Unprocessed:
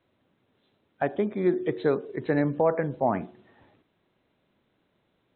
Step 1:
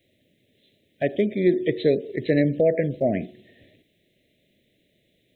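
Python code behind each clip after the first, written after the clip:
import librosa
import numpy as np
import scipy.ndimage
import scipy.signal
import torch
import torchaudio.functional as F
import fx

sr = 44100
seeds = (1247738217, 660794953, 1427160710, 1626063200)

y = scipy.signal.sosfilt(scipy.signal.ellip(3, 1.0, 40, [630.0, 1900.0], 'bandstop', fs=sr, output='sos'), x)
y = fx.high_shelf(y, sr, hz=3300.0, db=11.5)
y = F.gain(torch.from_numpy(y), 5.0).numpy()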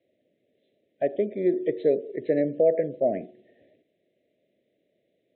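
y = fx.bandpass_q(x, sr, hz=590.0, q=1.1)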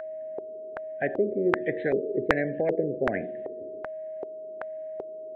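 y = x + 10.0 ** (-34.0 / 20.0) * np.sin(2.0 * np.pi * 630.0 * np.arange(len(x)) / sr)
y = fx.filter_lfo_lowpass(y, sr, shape='square', hz=1.3, low_hz=400.0, high_hz=1600.0, q=5.3)
y = fx.spectral_comp(y, sr, ratio=2.0)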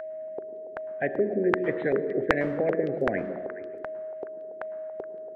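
y = fx.echo_stepped(x, sr, ms=141, hz=220.0, octaves=1.4, feedback_pct=70, wet_db=-6.5)
y = fx.rev_plate(y, sr, seeds[0], rt60_s=1.1, hf_ratio=0.7, predelay_ms=95, drr_db=16.0)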